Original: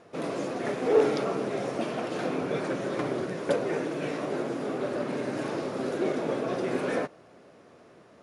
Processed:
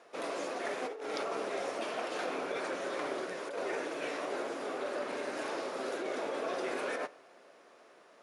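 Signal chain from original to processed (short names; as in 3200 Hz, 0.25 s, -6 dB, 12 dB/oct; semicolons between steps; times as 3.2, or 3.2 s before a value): Bessel high-pass 620 Hz, order 2; negative-ratio compressor -34 dBFS, ratio -1; on a send: reverb, pre-delay 3 ms, DRR 18 dB; on the sum: gain -1.5 dB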